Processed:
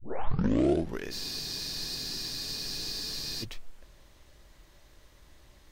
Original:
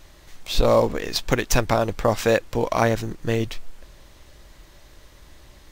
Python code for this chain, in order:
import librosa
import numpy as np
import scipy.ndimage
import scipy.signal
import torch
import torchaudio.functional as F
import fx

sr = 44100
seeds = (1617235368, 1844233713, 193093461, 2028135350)

y = fx.tape_start_head(x, sr, length_s=1.12)
y = fx.spec_freeze(y, sr, seeds[0], at_s=1.13, hold_s=2.3)
y = F.gain(torch.from_numpy(y), -8.5).numpy()